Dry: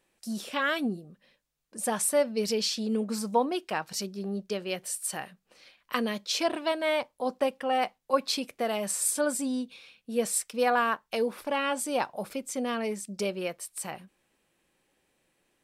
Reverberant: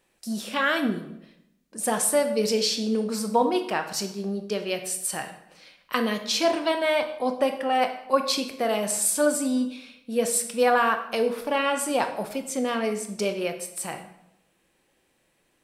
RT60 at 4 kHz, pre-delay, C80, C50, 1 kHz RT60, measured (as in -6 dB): 0.60 s, 17 ms, 12.0 dB, 9.0 dB, 0.80 s